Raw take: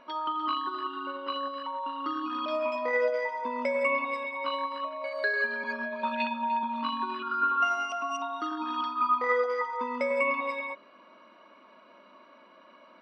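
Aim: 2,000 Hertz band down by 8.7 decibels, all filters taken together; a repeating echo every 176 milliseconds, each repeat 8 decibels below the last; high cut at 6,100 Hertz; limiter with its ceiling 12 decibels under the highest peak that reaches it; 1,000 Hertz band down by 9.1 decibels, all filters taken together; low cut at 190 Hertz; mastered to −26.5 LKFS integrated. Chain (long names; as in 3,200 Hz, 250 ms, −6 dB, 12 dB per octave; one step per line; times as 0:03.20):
high-pass filter 190 Hz
low-pass filter 6,100 Hz
parametric band 1,000 Hz −8.5 dB
parametric band 2,000 Hz −8 dB
brickwall limiter −31.5 dBFS
repeating echo 176 ms, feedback 40%, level −8 dB
level +12 dB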